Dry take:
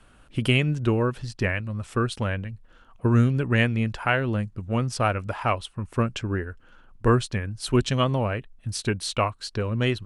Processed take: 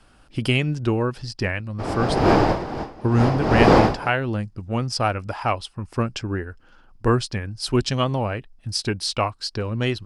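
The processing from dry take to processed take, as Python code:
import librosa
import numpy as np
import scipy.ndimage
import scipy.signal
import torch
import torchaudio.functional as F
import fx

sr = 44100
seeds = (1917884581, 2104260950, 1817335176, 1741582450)

y = fx.dmg_wind(x, sr, seeds[0], corner_hz=640.0, level_db=-21.0, at=(1.78, 4.08), fade=0.02)
y = fx.graphic_eq_31(y, sr, hz=(315, 800, 5000), db=(3, 5, 12))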